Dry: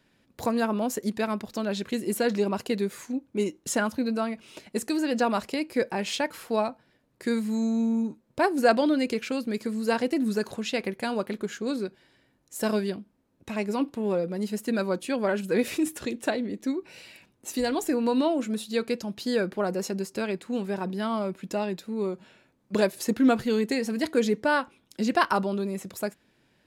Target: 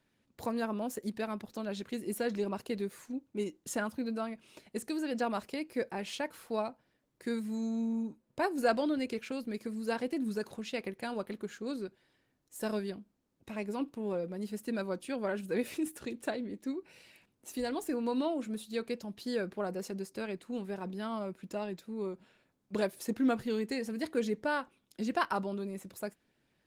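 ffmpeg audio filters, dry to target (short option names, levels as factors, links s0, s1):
-af "volume=0.398" -ar 48000 -c:a libopus -b:a 24k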